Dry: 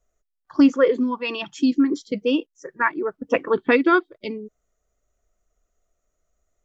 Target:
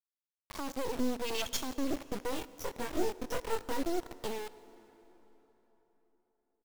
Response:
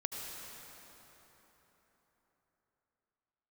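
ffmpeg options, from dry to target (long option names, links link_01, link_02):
-filter_complex "[0:a]equalizer=frequency=500:width_type=o:width=1:gain=8,equalizer=frequency=1000:width_type=o:width=1:gain=-5,equalizer=frequency=2000:width_type=o:width=1:gain=-12,equalizer=frequency=4000:width_type=o:width=1:gain=8,asettb=1/sr,asplit=3[link_01][link_02][link_03];[link_01]atrim=end=0.674[link_04];[link_02]atrim=start=0.67:end=1.57,asetpts=PTS-STARTPTS,afade=type=in:duration=0.004:curve=qsin,afade=type=out:start_time=0.896:duration=0.004:curve=qsin,acompressor=mode=upward:threshold=-16dB:ratio=2.5[link_05];[link_03]atrim=start=1.566[link_06];[link_04][link_05]acrossfade=duration=0.004:curve1=hsin:curve2=qsin[link_07];[link_07][link_06]acrossfade=duration=0.004:curve1=qsin:curve2=hsin,asplit=2[link_08][link_09];[link_09]alimiter=limit=-13.5dB:level=0:latency=1,volume=-2.5dB[link_10];[link_08][link_10]amix=inputs=2:normalize=0,acompressor=threshold=-26dB:ratio=3,asoftclip=type=hard:threshold=-23dB,aecho=1:1:79|158|237:0.112|0.0471|0.0198,acrossover=split=460[link_11][link_12];[link_11]aeval=exprs='val(0)*(1-1/2+1/2*cos(2*PI*1*n/s))':channel_layout=same[link_13];[link_12]aeval=exprs='val(0)*(1-1/2-1/2*cos(2*PI*1*n/s))':channel_layout=same[link_14];[link_13][link_14]amix=inputs=2:normalize=0,acrusher=bits=4:dc=4:mix=0:aa=0.000001,asettb=1/sr,asplit=3[link_15][link_16][link_17];[link_15]atrim=end=2.304[link_18];[link_16]atrim=start=2.3:end=3.83,asetpts=PTS-STARTPTS,afade=type=in:duration=0.004:curve=qsin,afade=type=out:start_time=1.526:duration=0.004:curve=qsin,asplit=2[link_19][link_20];[link_20]adelay=22,volume=-3dB[link_21];[link_19][link_21]amix=inputs=2:normalize=0,atrim=end_sample=67473[link_22];[link_17]atrim=start=3.826[link_23];[link_18][link_22]acrossfade=duration=0.004:curve1=hsin:curve2=qsin[link_24];[link_24][link_23]acrossfade=duration=0.004:curve1=qsin:curve2=hsin,asplit=2[link_25][link_26];[1:a]atrim=start_sample=2205[link_27];[link_26][link_27]afir=irnorm=-1:irlink=0,volume=-15dB[link_28];[link_25][link_28]amix=inputs=2:normalize=0"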